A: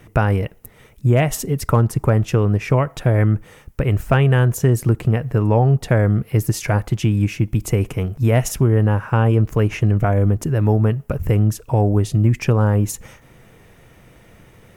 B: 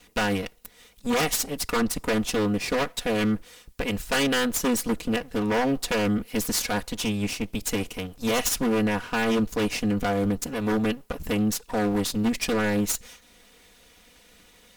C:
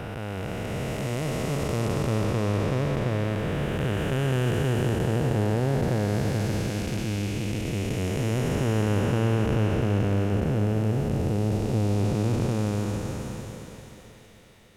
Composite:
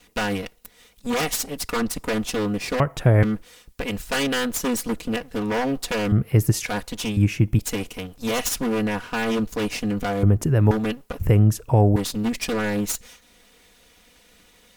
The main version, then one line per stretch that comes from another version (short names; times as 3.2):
B
2.8–3.23 from A
6.12–6.66 from A
7.17–7.59 from A
10.23–10.71 from A
11.21–11.96 from A
not used: C